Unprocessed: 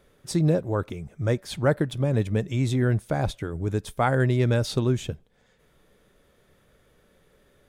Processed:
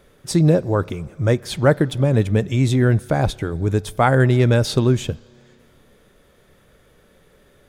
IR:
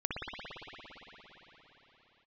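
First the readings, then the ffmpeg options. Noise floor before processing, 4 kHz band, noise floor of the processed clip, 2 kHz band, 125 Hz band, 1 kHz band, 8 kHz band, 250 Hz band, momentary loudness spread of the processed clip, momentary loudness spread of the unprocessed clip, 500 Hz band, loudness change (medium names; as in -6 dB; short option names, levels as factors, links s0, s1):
-63 dBFS, +7.0 dB, -55 dBFS, +7.0 dB, +6.5 dB, +7.0 dB, +7.0 dB, +7.0 dB, 7 LU, 7 LU, +7.0 dB, +6.5 dB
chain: -filter_complex "[0:a]asplit=2[s0][s1];[1:a]atrim=start_sample=2205,asetrate=83790,aresample=44100[s2];[s1][s2]afir=irnorm=-1:irlink=0,volume=0.0708[s3];[s0][s3]amix=inputs=2:normalize=0,volume=2.11"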